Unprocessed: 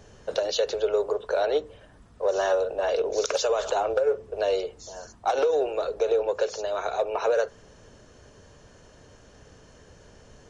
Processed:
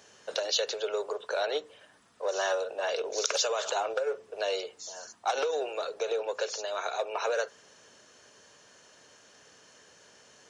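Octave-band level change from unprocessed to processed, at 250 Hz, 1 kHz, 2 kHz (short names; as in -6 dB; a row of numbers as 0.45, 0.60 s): -9.0, -4.0, 0.0 dB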